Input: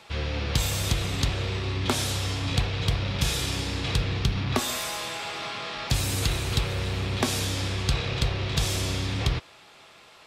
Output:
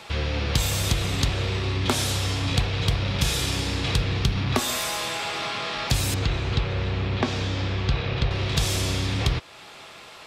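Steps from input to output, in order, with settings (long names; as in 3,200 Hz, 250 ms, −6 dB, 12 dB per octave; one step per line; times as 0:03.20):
in parallel at +3 dB: downward compressor, threshold −37 dBFS, peak gain reduction 17.5 dB
0:06.14–0:08.31: on the sum: high-frequency loss of the air 180 metres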